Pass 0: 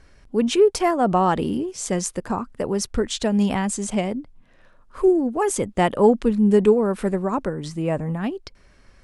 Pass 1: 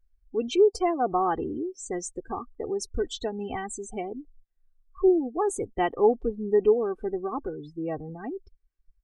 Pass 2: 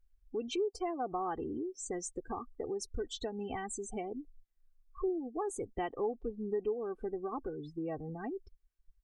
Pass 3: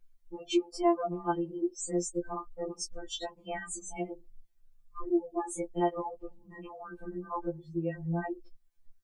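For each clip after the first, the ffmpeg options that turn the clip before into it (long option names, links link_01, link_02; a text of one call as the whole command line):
ffmpeg -i in.wav -af "aecho=1:1:2.6:0.71,afftdn=noise_reduction=34:noise_floor=-26,volume=-8dB" out.wav
ffmpeg -i in.wav -af "acompressor=threshold=-34dB:ratio=2.5,volume=-2.5dB" out.wav
ffmpeg -i in.wav -af "afftfilt=real='re*2.83*eq(mod(b,8),0)':imag='im*2.83*eq(mod(b,8),0)':win_size=2048:overlap=0.75,volume=7dB" out.wav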